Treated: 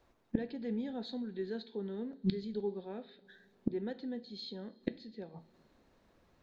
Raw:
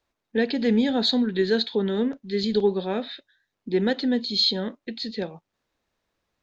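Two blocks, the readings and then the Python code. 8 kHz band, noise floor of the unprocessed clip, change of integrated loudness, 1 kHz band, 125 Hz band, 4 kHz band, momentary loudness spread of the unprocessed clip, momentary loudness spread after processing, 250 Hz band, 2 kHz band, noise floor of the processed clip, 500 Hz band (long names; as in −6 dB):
can't be measured, −82 dBFS, −15.5 dB, −17.5 dB, −9.5 dB, −24.0 dB, 12 LU, 12 LU, −13.5 dB, −20.5 dB, −69 dBFS, −15.5 dB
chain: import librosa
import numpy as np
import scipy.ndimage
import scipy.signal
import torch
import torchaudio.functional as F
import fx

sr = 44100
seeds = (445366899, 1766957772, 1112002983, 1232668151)

y = fx.gate_flip(x, sr, shuts_db=-29.0, range_db=-27)
y = fx.tilt_shelf(y, sr, db=5.5, hz=1500.0)
y = fx.rev_double_slope(y, sr, seeds[0], early_s=0.39, late_s=4.9, knee_db=-22, drr_db=11.5)
y = F.gain(torch.from_numpy(y), 6.0).numpy()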